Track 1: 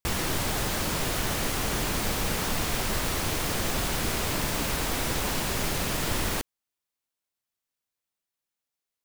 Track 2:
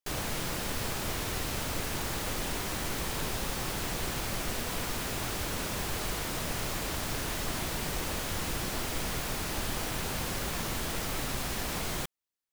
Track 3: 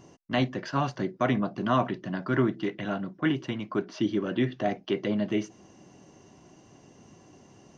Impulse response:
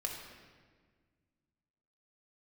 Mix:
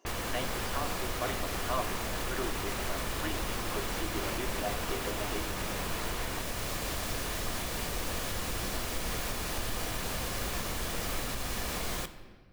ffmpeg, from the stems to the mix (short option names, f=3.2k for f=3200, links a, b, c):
-filter_complex "[0:a]lowpass=f=3.5k:w=0.5412,lowpass=f=3.5k:w=1.3066,equalizer=f=1.1k:w=1.5:g=3.5,volume=-2.5dB[a];[1:a]volume=0.5dB,asplit=2[b][c];[c]volume=-10.5dB[d];[2:a]highpass=f=330:w=0.5412,highpass=f=330:w=1.3066,volume=-11dB,asplit=2[e][f];[f]volume=-6dB[g];[a][b]amix=inputs=2:normalize=0,alimiter=level_in=2.5dB:limit=-24dB:level=0:latency=1:release=444,volume=-2.5dB,volume=0dB[h];[3:a]atrim=start_sample=2205[i];[d][g]amix=inputs=2:normalize=0[j];[j][i]afir=irnorm=-1:irlink=0[k];[e][h][k]amix=inputs=3:normalize=0,equalizer=f=150:w=7.5:g=-8.5"